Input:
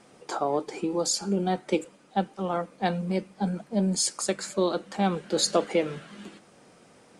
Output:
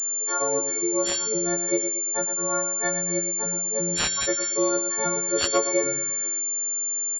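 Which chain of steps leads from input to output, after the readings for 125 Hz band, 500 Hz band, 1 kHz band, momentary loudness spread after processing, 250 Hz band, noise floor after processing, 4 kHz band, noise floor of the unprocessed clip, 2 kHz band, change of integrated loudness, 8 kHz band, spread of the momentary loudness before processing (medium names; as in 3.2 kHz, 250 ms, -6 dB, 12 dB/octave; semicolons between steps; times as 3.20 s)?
-6.5 dB, +1.5 dB, -1.0 dB, 3 LU, -2.5 dB, -28 dBFS, +1.0 dB, -57 dBFS, +6.0 dB, +5.0 dB, +13.5 dB, 7 LU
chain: partials quantised in pitch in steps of 4 st; static phaser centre 780 Hz, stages 6; in parallel at -9 dB: short-mantissa float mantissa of 2-bit; on the sum: feedback delay 115 ms, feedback 39%, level -9 dB; class-D stage that switches slowly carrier 7.2 kHz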